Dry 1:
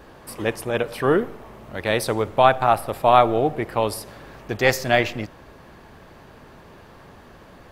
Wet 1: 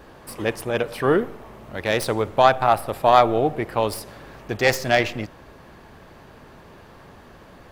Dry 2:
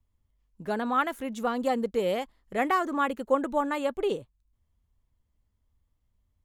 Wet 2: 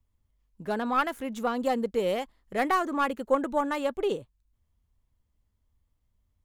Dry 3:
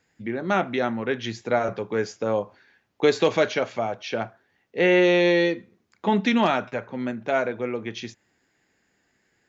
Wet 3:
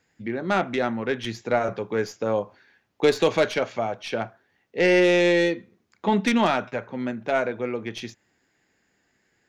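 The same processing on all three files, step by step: tracing distortion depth 0.047 ms

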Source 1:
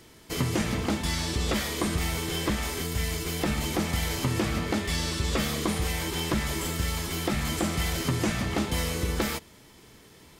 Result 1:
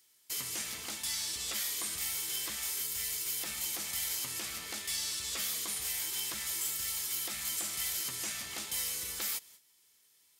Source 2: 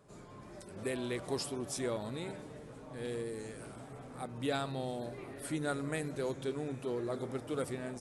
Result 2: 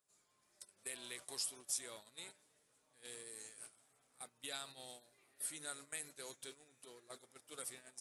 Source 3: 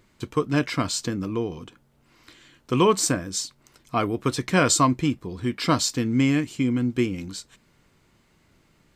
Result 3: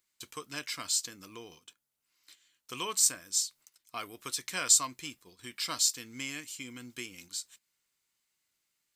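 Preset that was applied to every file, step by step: pre-emphasis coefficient 0.97; gate -56 dBFS, range -13 dB; in parallel at -2 dB: compressor, threshold -50 dBFS; on the sum: hard clip -11 dBFS

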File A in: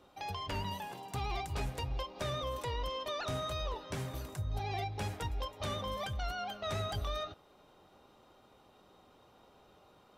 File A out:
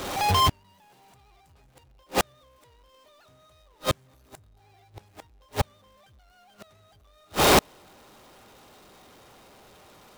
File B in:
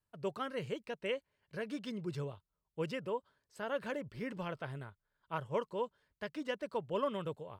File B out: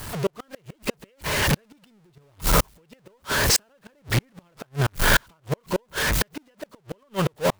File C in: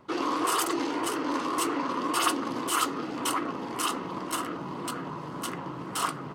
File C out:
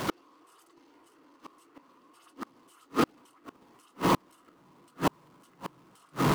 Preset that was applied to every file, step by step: zero-crossing step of -34 dBFS; recorder AGC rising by 26 dB/s; flipped gate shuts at -18 dBFS, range -40 dB; gain +4.5 dB

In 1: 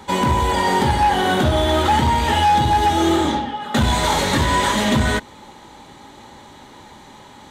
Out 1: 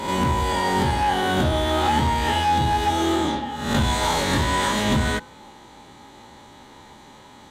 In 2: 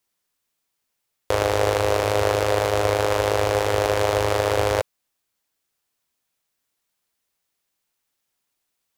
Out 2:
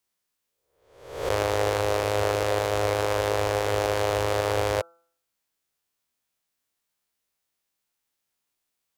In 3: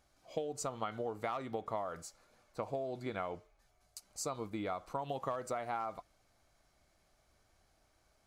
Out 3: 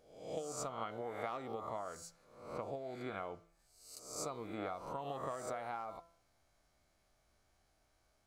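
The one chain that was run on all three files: spectral swells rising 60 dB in 0.70 s; de-hum 168.5 Hz, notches 9; gain -5.5 dB

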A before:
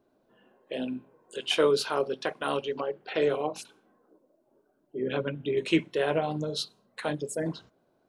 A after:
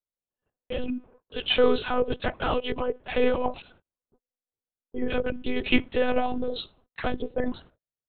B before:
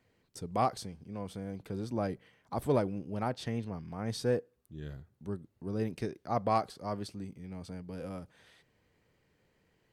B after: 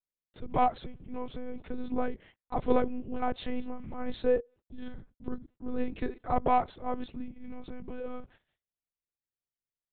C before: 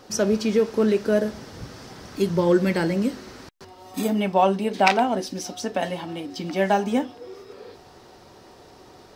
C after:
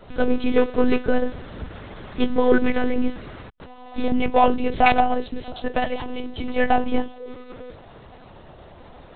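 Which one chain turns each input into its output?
gate -57 dBFS, range -39 dB; in parallel at -4 dB: soft clip -18 dBFS; on the sum: monotone LPC vocoder at 8 kHz 250 Hz

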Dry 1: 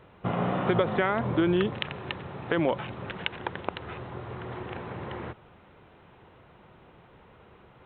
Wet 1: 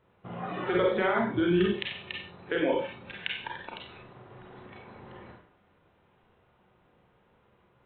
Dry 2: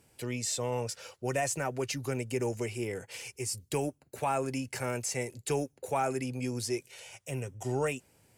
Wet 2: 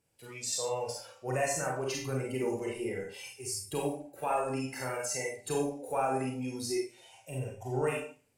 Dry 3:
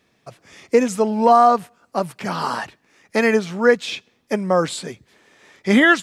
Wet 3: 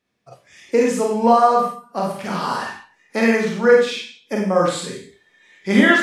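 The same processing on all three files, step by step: Schroeder reverb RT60 0.56 s, combs from 31 ms, DRR -2 dB; spectral noise reduction 11 dB; gain -3.5 dB

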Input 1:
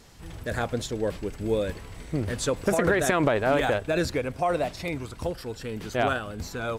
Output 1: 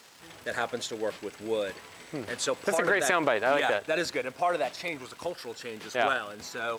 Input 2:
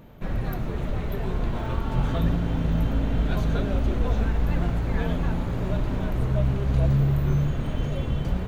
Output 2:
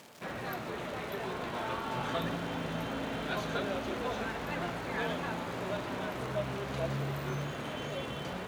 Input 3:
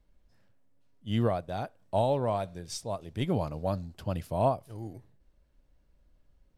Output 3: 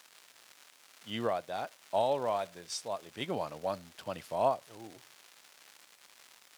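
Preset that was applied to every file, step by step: added noise white -63 dBFS; crackle 260/s -40 dBFS; weighting filter A

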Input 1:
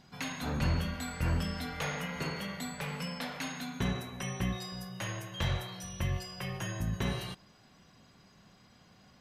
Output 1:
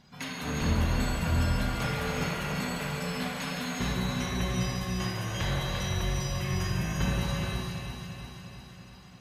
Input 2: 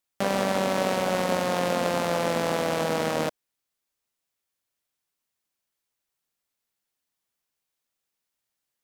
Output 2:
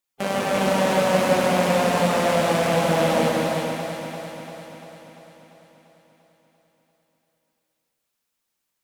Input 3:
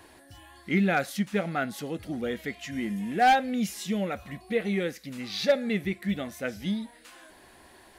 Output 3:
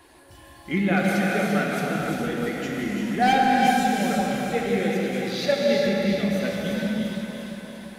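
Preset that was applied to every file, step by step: bin magnitudes rounded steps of 15 dB; echo with dull and thin repeats by turns 0.172 s, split 1400 Hz, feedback 78%, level -4 dB; non-linear reverb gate 0.5 s flat, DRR -2 dB

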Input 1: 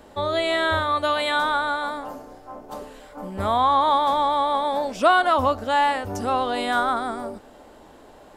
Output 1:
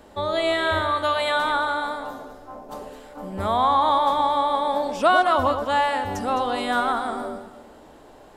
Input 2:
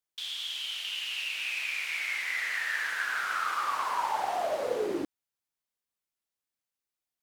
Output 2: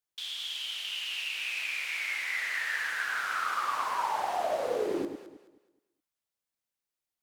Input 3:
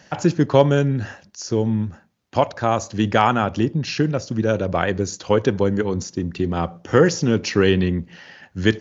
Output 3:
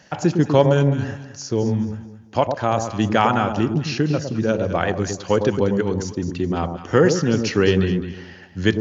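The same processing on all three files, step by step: echo with dull and thin repeats by turns 0.106 s, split 930 Hz, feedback 52%, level -5.5 dB; gain -1 dB

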